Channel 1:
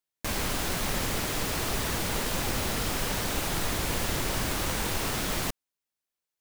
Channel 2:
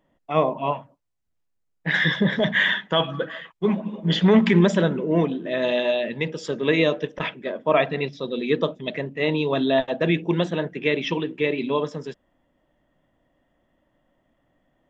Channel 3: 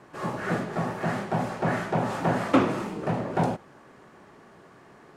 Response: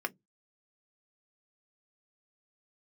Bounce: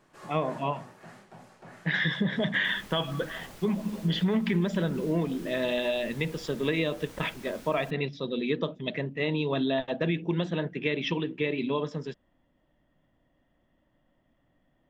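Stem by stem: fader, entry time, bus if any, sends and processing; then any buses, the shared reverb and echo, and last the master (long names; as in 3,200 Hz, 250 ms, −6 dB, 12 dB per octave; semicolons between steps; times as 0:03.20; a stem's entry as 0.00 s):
−19.5 dB, 2.40 s, no send, no processing
0.0 dB, 0.00 s, no send, drawn EQ curve 150 Hz 0 dB, 550 Hz −5 dB, 4,500 Hz −2 dB, 6,900 Hz −7 dB
−14.0 dB, 0.00 s, no send, high-shelf EQ 2,400 Hz +10 dB; automatic ducking −10 dB, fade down 1.35 s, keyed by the second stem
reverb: not used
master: downward compressor 4 to 1, threshold −24 dBFS, peak gain reduction 10 dB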